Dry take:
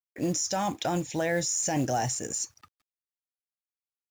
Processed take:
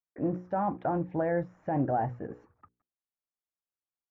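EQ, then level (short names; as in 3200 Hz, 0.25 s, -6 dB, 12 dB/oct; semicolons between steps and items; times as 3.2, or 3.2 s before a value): LPF 1400 Hz 24 dB/oct; notches 60/120/180/240/300/360/420/480/540 Hz; 0.0 dB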